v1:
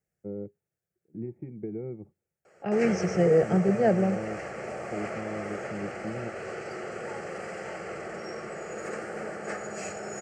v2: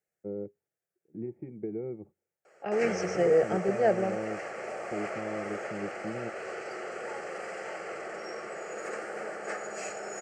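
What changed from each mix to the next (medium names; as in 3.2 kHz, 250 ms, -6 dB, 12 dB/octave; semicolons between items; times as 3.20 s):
first voice: add bass shelf 290 Hz +10.5 dB; master: add tone controls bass -15 dB, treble -1 dB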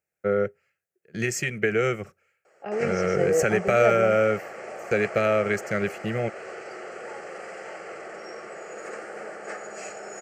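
first voice: remove cascade formant filter u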